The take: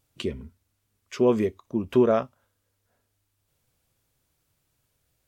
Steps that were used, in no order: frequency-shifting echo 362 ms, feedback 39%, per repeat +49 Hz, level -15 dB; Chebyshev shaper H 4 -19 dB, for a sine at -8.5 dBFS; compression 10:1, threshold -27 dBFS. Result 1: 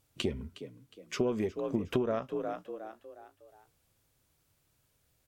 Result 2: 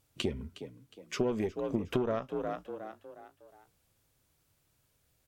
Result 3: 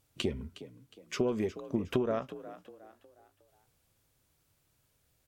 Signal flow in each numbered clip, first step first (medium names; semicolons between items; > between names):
frequency-shifting echo > compression > Chebyshev shaper; Chebyshev shaper > frequency-shifting echo > compression; compression > Chebyshev shaper > frequency-shifting echo